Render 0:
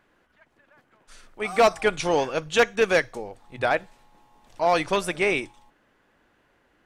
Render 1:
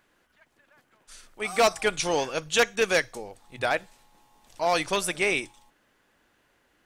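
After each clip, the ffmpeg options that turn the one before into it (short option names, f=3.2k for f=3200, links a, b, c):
-af "highshelf=f=3.5k:g=11.5,volume=-4dB"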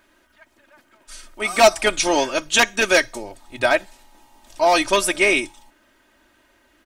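-af "aecho=1:1:3.2:0.76,volume=6dB"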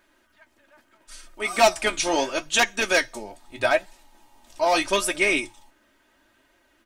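-af "flanger=delay=5.3:depth=9.4:regen=52:speed=0.76:shape=triangular"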